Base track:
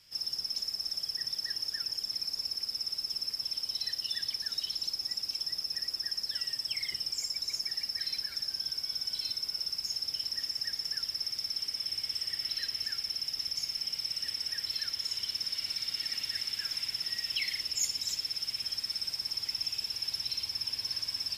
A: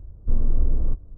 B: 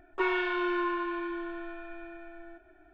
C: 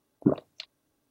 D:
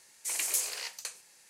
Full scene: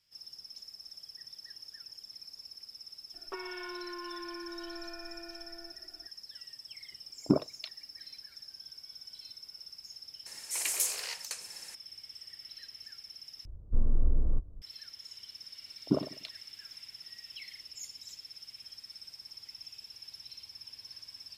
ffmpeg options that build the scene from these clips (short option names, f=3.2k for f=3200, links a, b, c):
-filter_complex "[3:a]asplit=2[a][b];[0:a]volume=-13.5dB[c];[2:a]acompressor=threshold=-41dB:ratio=10:attack=46:release=70:knee=1:detection=peak[d];[a]asoftclip=type=hard:threshold=-9dB[e];[4:a]acompressor=mode=upward:threshold=-37dB:ratio=2.5:attack=3.2:release=140:knee=2.83:detection=peak[f];[b]asplit=2[g][h];[h]adelay=98,lowpass=f=2k:p=1,volume=-13.5dB,asplit=2[i][j];[j]adelay=98,lowpass=f=2k:p=1,volume=0.27,asplit=2[k][l];[l]adelay=98,lowpass=f=2k:p=1,volume=0.27[m];[g][i][k][m]amix=inputs=4:normalize=0[n];[c]asplit=2[o][p];[o]atrim=end=13.454[q];[1:a]atrim=end=1.17,asetpts=PTS-STARTPTS,volume=-6dB[r];[p]atrim=start=14.616[s];[d]atrim=end=2.93,asetpts=PTS-STARTPTS,volume=-3dB,afade=t=in:d=0.004:c=hsin,afade=t=out:st=2.926:d=0.004:c=hsin,adelay=3140[t];[e]atrim=end=1.1,asetpts=PTS-STARTPTS,volume=-2dB,afade=t=in:d=0.004:c=hsin,afade=t=out:st=1.096:d=0.004:c=hsin,adelay=7040[u];[f]atrim=end=1.49,asetpts=PTS-STARTPTS,volume=-0.5dB,afade=t=in:d=0.004:c=hsin,afade=t=out:st=1.486:d=0.004:c=hsin,adelay=452466S[v];[n]atrim=end=1.1,asetpts=PTS-STARTPTS,volume=-5dB,afade=t=in:d=0.004:c=hsin,afade=t=out:st=1.096:d=0.004:c=hsin,adelay=15650[w];[q][r]acrossfade=d=0.004:c1=hsin:c2=hsin[x];[x][s]acrossfade=d=0.004:c1=hsin:c2=hsin[y];[y][t][u][v][w]amix=inputs=5:normalize=0"